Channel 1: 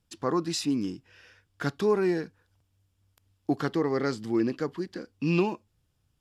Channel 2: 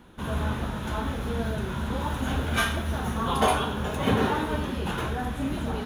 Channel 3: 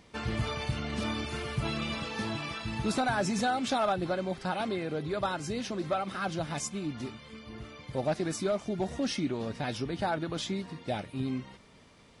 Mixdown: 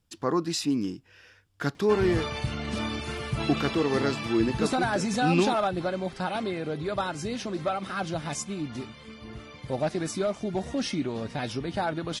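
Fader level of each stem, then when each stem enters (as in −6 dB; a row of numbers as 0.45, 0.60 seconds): +1.0 dB, muted, +2.0 dB; 0.00 s, muted, 1.75 s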